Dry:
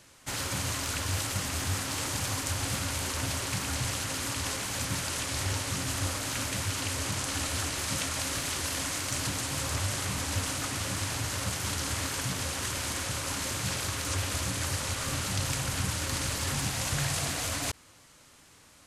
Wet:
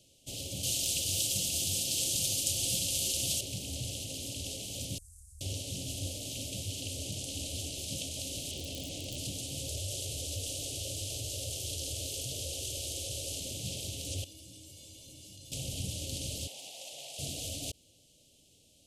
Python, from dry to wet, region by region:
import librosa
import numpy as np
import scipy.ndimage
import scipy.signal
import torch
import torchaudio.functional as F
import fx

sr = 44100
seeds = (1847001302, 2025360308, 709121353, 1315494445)

y = fx.chain(x, sr, fx.high_shelf(hz=2400.0, db=10.0),
    fx.comb(ms=5.8, depth=0.39), at=(0.63, 3.41))
y = fx.chain(y, sr, fx.cheby2_bandstop(low_hz=190.0, high_hz=3400.0, order=4, stop_db=60),
    fx.air_absorb(metres=87.0),
    fx.env_flatten(amount_pct=50), at=(4.98, 5.41))
y = fx.chain(y, sr, fx.lowpass(hz=3100.0, slope=6),
    fx.overflow_wrap(gain_db=25.5),
    fx.env_flatten(amount_pct=100), at=(8.51, 9.18))
y = fx.chain(y, sr, fx.fixed_phaser(hz=500.0, stages=4),
    fx.env_flatten(amount_pct=50), at=(9.68, 13.4))
y = fx.chain(y, sr, fx.comb_fb(f0_hz=320.0, decay_s=0.28, harmonics='odd', damping=0.0, mix_pct=90),
    fx.env_flatten(amount_pct=100), at=(14.24, 15.52))
y = fx.chain(y, sr, fx.highpass_res(hz=830.0, q=1.7),
    fx.high_shelf(hz=2900.0, db=-9.0), at=(16.47, 17.19))
y = scipy.signal.sosfilt(scipy.signal.ellip(3, 1.0, 70, [620.0, 3000.0], 'bandstop', fs=sr, output='sos'), y)
y = fx.peak_eq(y, sr, hz=2800.0, db=3.5, octaves=0.77)
y = y * librosa.db_to_amplitude(-5.5)